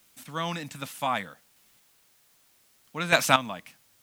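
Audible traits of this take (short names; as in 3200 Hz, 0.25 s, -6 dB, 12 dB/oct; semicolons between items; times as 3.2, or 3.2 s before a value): chopped level 0.64 Hz, depth 65%, duty 15%; a quantiser's noise floor 12-bit, dither triangular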